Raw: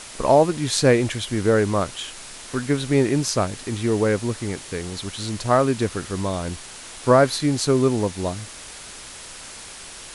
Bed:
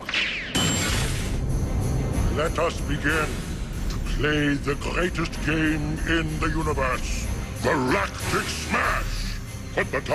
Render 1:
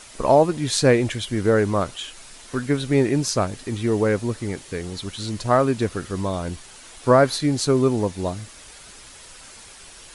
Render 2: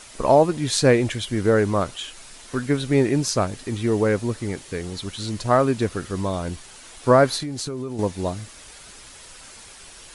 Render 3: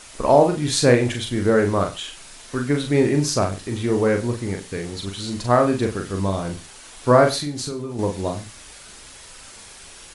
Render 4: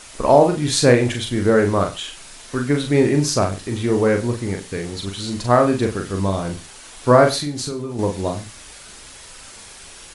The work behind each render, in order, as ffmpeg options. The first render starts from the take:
-af "afftdn=nr=7:nf=-39"
-filter_complex "[0:a]asettb=1/sr,asplit=3[a][b][c];[a]atrim=end=7.394[d];[b]atrim=start=7.39:end=7.99,asetpts=PTS-STARTPTS,afade=t=in:d=0.004:c=qsin,afade=t=out:st=0.596:d=0.004:c=qsin,acompressor=threshold=-25dB:ratio=16:attack=3.2:release=140:knee=1:detection=peak[e];[c]atrim=start=7.986[f];[d][e]acrossfade=d=0.004:c1=hsin:c2=qsin[g];[g][f]acrossfade=d=0.004:c1=qsin:c2=hsin"
-filter_complex "[0:a]asplit=2[a][b];[b]adelay=41,volume=-5dB[c];[a][c]amix=inputs=2:normalize=0,aecho=1:1:94:0.133"
-af "volume=2dB,alimiter=limit=-1dB:level=0:latency=1"

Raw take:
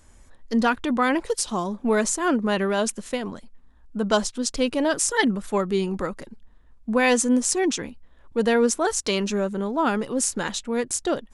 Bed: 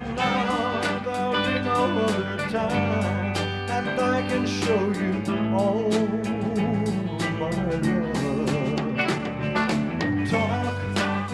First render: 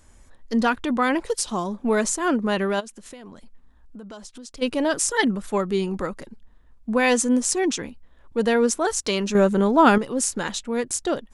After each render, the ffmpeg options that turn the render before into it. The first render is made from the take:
-filter_complex "[0:a]asplit=3[a][b][c];[a]afade=t=out:st=2.79:d=0.02[d];[b]acompressor=threshold=-38dB:ratio=6:attack=3.2:release=140:knee=1:detection=peak,afade=t=in:st=2.79:d=0.02,afade=t=out:st=4.61:d=0.02[e];[c]afade=t=in:st=4.61:d=0.02[f];[d][e][f]amix=inputs=3:normalize=0,asplit=3[g][h][i];[g]atrim=end=9.352[j];[h]atrim=start=9.348:end=9.982,asetpts=PTS-STARTPTS,volume=7.5dB[k];[i]atrim=start=9.978[l];[j][k]acrossfade=d=0.004:c1=hsin:c2=hsin[m];[m][l]acrossfade=d=0.004:c1=hsin:c2=hsin"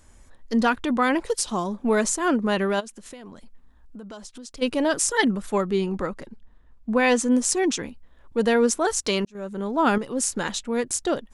-filter_complex "[0:a]asettb=1/sr,asplit=3[a][b][c];[a]atrim=end=5.694[d];[b]atrim=start=5.69:end=7.32,asetpts=PTS-STARTPTS,afade=t=in:d=0.004:c=qsin,afade=t=out:st=1.626:d=0.004:c=qsin,highshelf=f=6.5k:g=-8.5[e];[c]atrim=start=7.316[f];[d][e]acrossfade=d=0.004:c1=hsin:c2=qsin[g];[g][f]acrossfade=d=0.004:c1=qsin:c2=hsin,asplit=2[h][i];[h]atrim=end=9.25,asetpts=PTS-STARTPTS,afade=t=out:st=9.246:d=0.004:c=hsin[j];[i]atrim=start=9.25,asetpts=PTS-STARTPTS,afade=t=in:d=1.13[k];[j][k]concat=n=2:v=0:a=1"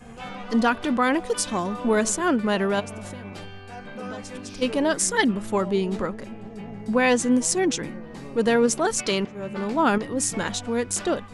-filter_complex "[1:a]volume=-13.5dB[a];[0:a][a]amix=inputs=2:normalize=0"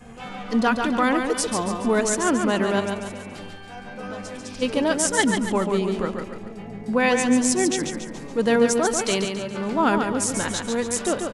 -af "aecho=1:1:141|282|423|564|705|846:0.531|0.244|0.112|0.0517|0.0238|0.0109"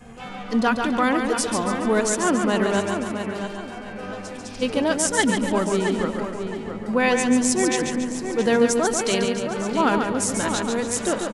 -filter_complex "[0:a]asplit=2[a][b];[b]adelay=668,lowpass=f=4.3k:p=1,volume=-8dB,asplit=2[c][d];[d]adelay=668,lowpass=f=4.3k:p=1,volume=0.32,asplit=2[e][f];[f]adelay=668,lowpass=f=4.3k:p=1,volume=0.32,asplit=2[g][h];[h]adelay=668,lowpass=f=4.3k:p=1,volume=0.32[i];[a][c][e][g][i]amix=inputs=5:normalize=0"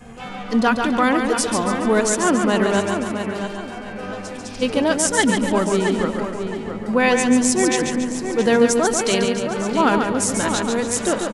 -af "volume=3dB,alimiter=limit=-3dB:level=0:latency=1"

